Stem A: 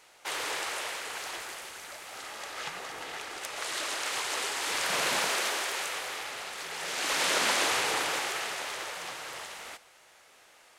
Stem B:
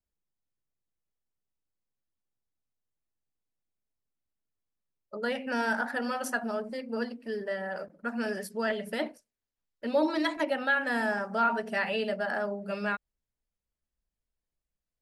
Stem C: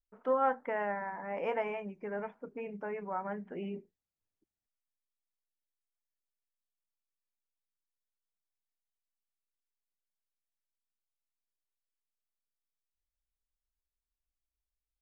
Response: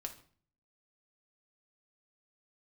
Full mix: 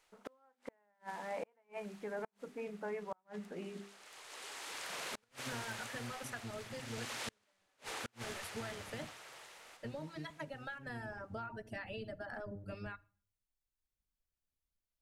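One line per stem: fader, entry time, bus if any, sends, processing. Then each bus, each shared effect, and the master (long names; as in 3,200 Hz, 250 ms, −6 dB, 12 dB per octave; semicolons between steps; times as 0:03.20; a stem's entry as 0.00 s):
−15.0 dB, 0.00 s, send −21.5 dB, echo send −10 dB, automatic ducking −16 dB, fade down 0.85 s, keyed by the third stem
−9.0 dB, 0.00 s, send −9.5 dB, no echo send, sub-octave generator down 1 octave, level +3 dB; reverb reduction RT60 0.77 s; downward compressor 10 to 1, threshold −34 dBFS, peak gain reduction 14 dB
−3.5 dB, 0.00 s, send −14.5 dB, no echo send, mains-hum notches 50/100/150/200/250/300/350/400 Hz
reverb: on, RT60 0.45 s, pre-delay 5 ms
echo: single-tap delay 679 ms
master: gate with flip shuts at −30 dBFS, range −38 dB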